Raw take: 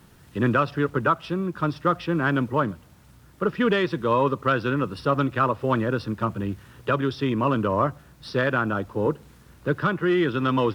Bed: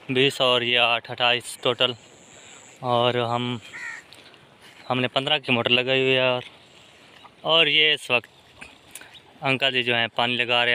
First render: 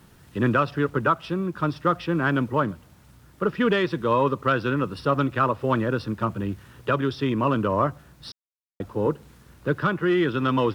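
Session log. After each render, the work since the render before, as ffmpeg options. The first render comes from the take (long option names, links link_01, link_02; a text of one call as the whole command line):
ffmpeg -i in.wav -filter_complex "[0:a]asplit=3[link_01][link_02][link_03];[link_01]atrim=end=8.32,asetpts=PTS-STARTPTS,afade=type=out:start_time=8.316:duration=0.004:curve=hsin[link_04];[link_02]atrim=start=8.32:end=8.8,asetpts=PTS-STARTPTS,volume=0[link_05];[link_03]atrim=start=8.8,asetpts=PTS-STARTPTS,afade=type=in:duration=0.004:curve=hsin[link_06];[link_04][link_05][link_06]concat=n=3:v=0:a=1" out.wav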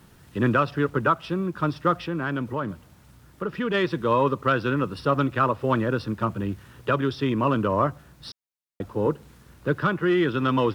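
ffmpeg -i in.wav -filter_complex "[0:a]asplit=3[link_01][link_02][link_03];[link_01]afade=type=out:start_time=2.01:duration=0.02[link_04];[link_02]acompressor=threshold=-27dB:ratio=2:attack=3.2:release=140:knee=1:detection=peak,afade=type=in:start_time=2.01:duration=0.02,afade=type=out:start_time=3.73:duration=0.02[link_05];[link_03]afade=type=in:start_time=3.73:duration=0.02[link_06];[link_04][link_05][link_06]amix=inputs=3:normalize=0" out.wav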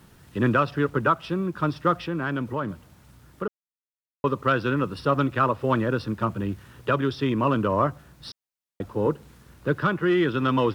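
ffmpeg -i in.wav -filter_complex "[0:a]asplit=3[link_01][link_02][link_03];[link_01]atrim=end=3.48,asetpts=PTS-STARTPTS,afade=type=out:start_time=3.476:duration=0.004:curve=hsin[link_04];[link_02]atrim=start=3.48:end=4.24,asetpts=PTS-STARTPTS,volume=0[link_05];[link_03]atrim=start=4.24,asetpts=PTS-STARTPTS,afade=type=in:duration=0.004:curve=hsin[link_06];[link_04][link_05][link_06]concat=n=3:v=0:a=1" out.wav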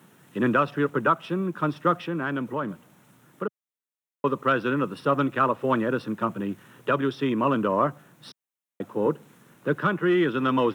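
ffmpeg -i in.wav -af "highpass=frequency=150:width=0.5412,highpass=frequency=150:width=1.3066,equalizer=frequency=4700:width=3:gain=-10" out.wav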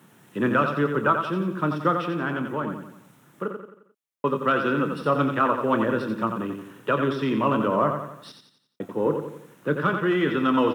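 ffmpeg -i in.wav -filter_complex "[0:a]asplit=2[link_01][link_02];[link_02]adelay=27,volume=-12dB[link_03];[link_01][link_03]amix=inputs=2:normalize=0,aecho=1:1:88|176|264|352|440:0.473|0.218|0.1|0.0461|0.0212" out.wav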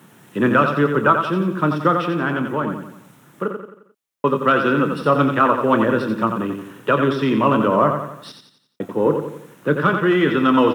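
ffmpeg -i in.wav -af "volume=6dB,alimiter=limit=-3dB:level=0:latency=1" out.wav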